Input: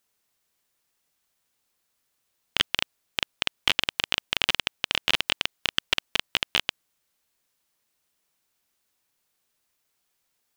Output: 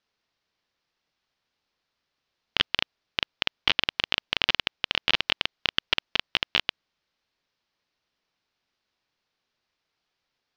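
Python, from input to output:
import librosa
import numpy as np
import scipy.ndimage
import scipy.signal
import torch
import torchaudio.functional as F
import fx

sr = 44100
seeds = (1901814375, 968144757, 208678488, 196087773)

y = scipy.signal.sosfilt(scipy.signal.butter(6, 5300.0, 'lowpass', fs=sr, output='sos'), x)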